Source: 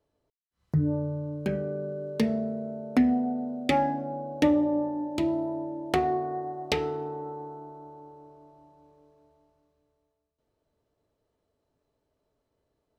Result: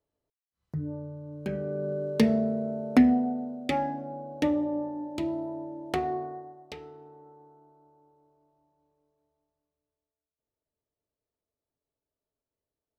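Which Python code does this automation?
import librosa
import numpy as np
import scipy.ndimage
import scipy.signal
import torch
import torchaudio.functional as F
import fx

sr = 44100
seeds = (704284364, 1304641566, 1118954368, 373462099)

y = fx.gain(x, sr, db=fx.line((1.2, -8.5), (1.93, 3.5), (2.96, 3.5), (3.6, -4.0), (6.23, -4.0), (6.66, -15.5)))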